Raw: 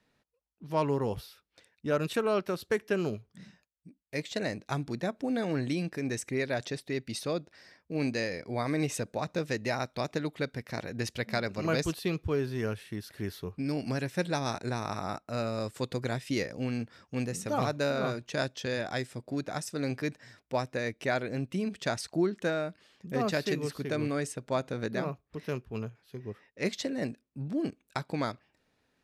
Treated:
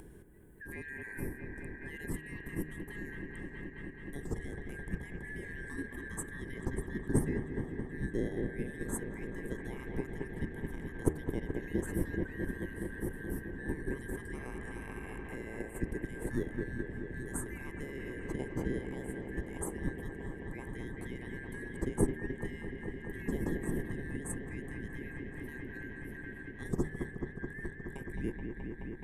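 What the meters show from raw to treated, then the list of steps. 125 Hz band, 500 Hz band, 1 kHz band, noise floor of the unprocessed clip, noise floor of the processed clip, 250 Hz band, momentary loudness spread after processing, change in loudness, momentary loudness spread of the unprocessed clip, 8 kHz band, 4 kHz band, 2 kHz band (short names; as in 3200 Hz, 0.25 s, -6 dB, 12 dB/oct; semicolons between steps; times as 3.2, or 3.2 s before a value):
-4.5 dB, -9.0 dB, -15.0 dB, -76 dBFS, -47 dBFS, -4.5 dB, 8 LU, -6.5 dB, 8 LU, -4.5 dB, -20.0 dB, -4.5 dB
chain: four-band scrambler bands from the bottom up 4123; on a send: dark delay 0.213 s, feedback 83%, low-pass 2800 Hz, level -8 dB; on the sum: limiter -22.5 dBFS, peak gain reduction 8.5 dB; EQ curve 110 Hz 0 dB, 170 Hz +5 dB, 400 Hz +9 dB, 640 Hz -10 dB, 930 Hz -5 dB, 1900 Hz -23 dB, 5000 Hz -28 dB, 8600 Hz +7 dB, 12000 Hz +9 dB; in parallel at 0 dB: level quantiser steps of 12 dB; on the sum: RIAA curve playback; de-hum 76.88 Hz, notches 34; upward compressor, threshold -39 dBFS; gain +2.5 dB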